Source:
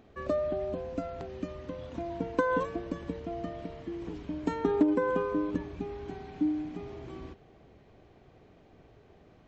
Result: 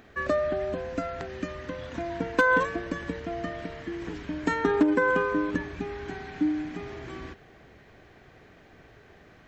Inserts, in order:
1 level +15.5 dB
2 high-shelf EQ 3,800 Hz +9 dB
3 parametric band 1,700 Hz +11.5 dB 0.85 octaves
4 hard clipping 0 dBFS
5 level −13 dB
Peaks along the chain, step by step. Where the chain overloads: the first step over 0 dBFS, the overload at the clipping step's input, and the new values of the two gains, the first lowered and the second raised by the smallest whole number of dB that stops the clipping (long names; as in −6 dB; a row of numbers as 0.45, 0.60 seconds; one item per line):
+1.5, +1.5, +4.5, 0.0, −13.0 dBFS
step 1, 4.5 dB
step 1 +10.5 dB, step 5 −8 dB